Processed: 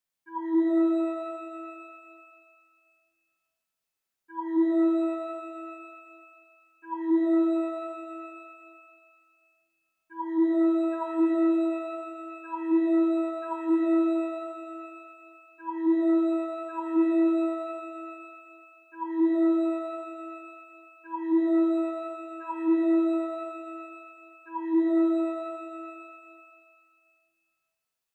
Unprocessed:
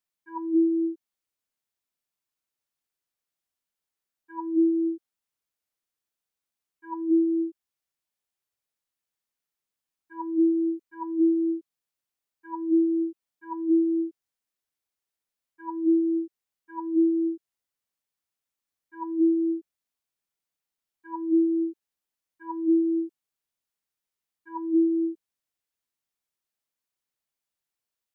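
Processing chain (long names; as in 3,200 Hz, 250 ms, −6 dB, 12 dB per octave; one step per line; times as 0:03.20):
reverb with rising layers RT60 2.2 s, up +12 semitones, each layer −8 dB, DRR 1.5 dB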